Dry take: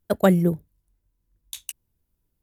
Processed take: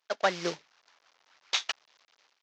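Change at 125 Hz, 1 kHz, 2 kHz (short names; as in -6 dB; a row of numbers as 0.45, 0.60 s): -24.5, -2.0, +2.5 dB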